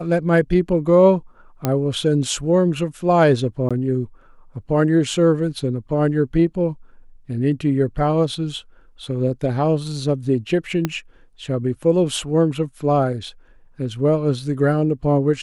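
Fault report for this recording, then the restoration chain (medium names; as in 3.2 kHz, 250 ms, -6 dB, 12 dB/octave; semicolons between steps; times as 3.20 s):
1.65 s: pop -6 dBFS
3.69–3.71 s: dropout 16 ms
10.85 s: pop -7 dBFS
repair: de-click; interpolate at 3.69 s, 16 ms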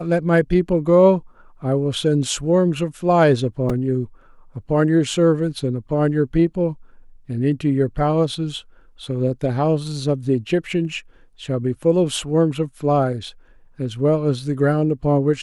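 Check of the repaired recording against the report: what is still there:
10.85 s: pop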